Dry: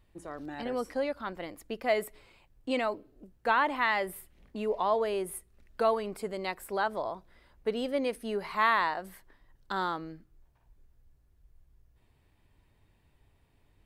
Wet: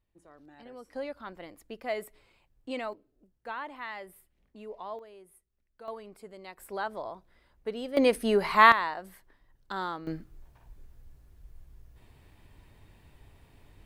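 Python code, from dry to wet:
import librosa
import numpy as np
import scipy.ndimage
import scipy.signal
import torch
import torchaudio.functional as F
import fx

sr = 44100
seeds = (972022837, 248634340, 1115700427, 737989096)

y = fx.gain(x, sr, db=fx.steps((0.0, -14.0), (0.93, -5.5), (2.93, -12.0), (4.99, -20.0), (5.88, -11.5), (6.58, -4.0), (7.97, 8.5), (8.72, -2.5), (10.07, 10.0)))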